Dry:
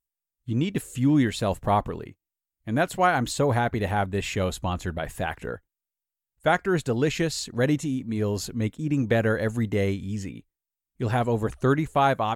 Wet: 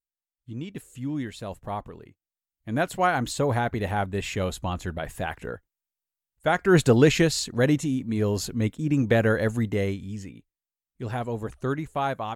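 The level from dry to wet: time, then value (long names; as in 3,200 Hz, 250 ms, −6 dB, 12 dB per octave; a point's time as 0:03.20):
0:01.94 −10 dB
0:02.80 −1.5 dB
0:06.54 −1.5 dB
0:06.80 +8.5 dB
0:07.58 +1.5 dB
0:09.46 +1.5 dB
0:10.35 −6 dB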